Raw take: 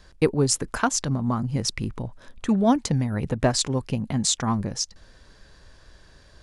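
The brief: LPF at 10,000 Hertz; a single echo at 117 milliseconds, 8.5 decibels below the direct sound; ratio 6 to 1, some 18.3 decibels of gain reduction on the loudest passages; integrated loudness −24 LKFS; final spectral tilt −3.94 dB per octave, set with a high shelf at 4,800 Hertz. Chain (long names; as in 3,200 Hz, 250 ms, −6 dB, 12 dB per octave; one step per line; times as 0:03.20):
low-pass filter 10,000 Hz
high-shelf EQ 4,800 Hz +9 dB
downward compressor 6 to 1, threshold −35 dBFS
single-tap delay 117 ms −8.5 dB
level +13.5 dB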